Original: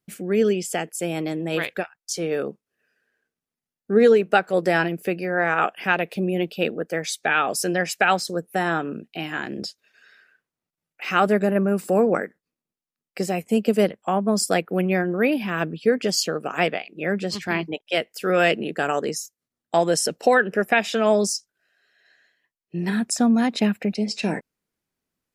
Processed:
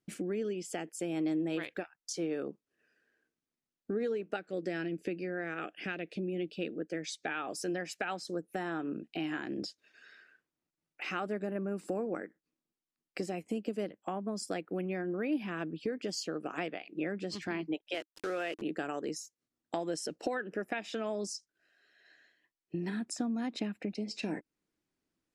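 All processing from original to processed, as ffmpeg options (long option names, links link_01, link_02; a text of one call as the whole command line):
ffmpeg -i in.wav -filter_complex "[0:a]asettb=1/sr,asplit=3[link_01][link_02][link_03];[link_01]atrim=end=4.364[link_04];[link_02]atrim=start=4.36:end=7.26,asetpts=PTS-STARTPTS,afade=type=in:duration=0.004:curve=qsin,afade=type=out:start_time=2.896:duration=0.004:curve=qsin,lowpass=8000,equalizer=frequency=940:width_type=o:width=0.81:gain=-13.5[link_05];[link_03]atrim=start=7.256[link_06];[link_04][link_05]acrossfade=duration=0.004:curve1=hsin:curve2=qsin[link_07];[link_07][link_06]acrossfade=duration=0.004:curve1=qsin:curve2=hsin,asettb=1/sr,asplit=3[link_08][link_09][link_10];[link_08]atrim=end=17.944[link_11];[link_09]atrim=start=17.94:end=18.62,asetpts=PTS-STARTPTS,afade=type=in:duration=0.004:curve=qsin,afade=type=out:start_time=0.676:duration=0.004:curve=qsin,bass=frequency=250:gain=-14,treble=frequency=4000:gain=-3,aeval=exprs='val(0)*gte(abs(val(0)),0.0316)':channel_layout=same[link_12];[link_10]atrim=start=18.616[link_13];[link_11][link_12]acrossfade=duration=0.004:curve1=hsin:curve2=qsin[link_14];[link_14][link_13]acrossfade=duration=0.004:curve1=qsin:curve2=hsin,acompressor=threshold=-35dB:ratio=3,lowpass=8500,equalizer=frequency=310:width_type=o:width=0.39:gain=9.5,volume=-3.5dB" out.wav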